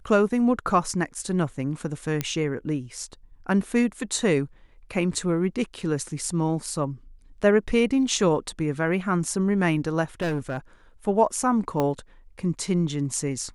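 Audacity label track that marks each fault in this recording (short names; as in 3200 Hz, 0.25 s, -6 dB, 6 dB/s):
2.210000	2.210000	pop -11 dBFS
10.210000	10.580000	clipped -22.5 dBFS
11.800000	11.800000	pop -12 dBFS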